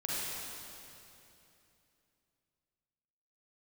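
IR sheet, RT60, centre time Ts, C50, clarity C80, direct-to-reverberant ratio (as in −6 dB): 2.9 s, 200 ms, −5.5 dB, −3.0 dB, −7.5 dB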